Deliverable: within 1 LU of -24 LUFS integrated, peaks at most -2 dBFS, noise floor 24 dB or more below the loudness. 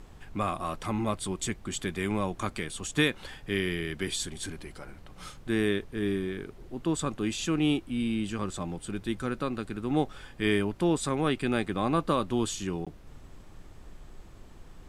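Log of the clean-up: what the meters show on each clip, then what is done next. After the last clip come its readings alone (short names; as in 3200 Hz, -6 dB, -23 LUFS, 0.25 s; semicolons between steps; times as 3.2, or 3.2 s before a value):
dropouts 1; longest dropout 16 ms; noise floor -50 dBFS; noise floor target -55 dBFS; loudness -30.5 LUFS; peak -13.0 dBFS; loudness target -24.0 LUFS
-> interpolate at 12.85, 16 ms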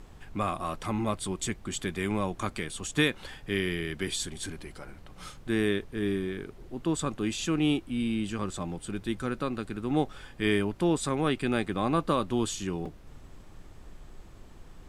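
dropouts 0; noise floor -50 dBFS; noise floor target -55 dBFS
-> noise print and reduce 6 dB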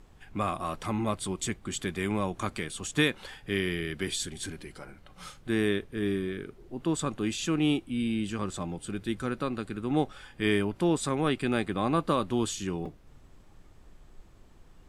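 noise floor -55 dBFS; loudness -30.5 LUFS; peak -13.0 dBFS; loudness target -24.0 LUFS
-> gain +6.5 dB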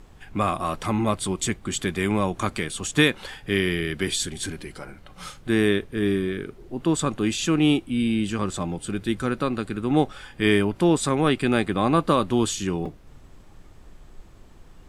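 loudness -24.0 LUFS; peak -6.5 dBFS; noise floor -48 dBFS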